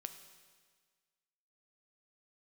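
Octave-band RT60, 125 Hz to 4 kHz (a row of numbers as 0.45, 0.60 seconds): 1.6, 1.6, 1.6, 1.6, 1.6, 1.6 seconds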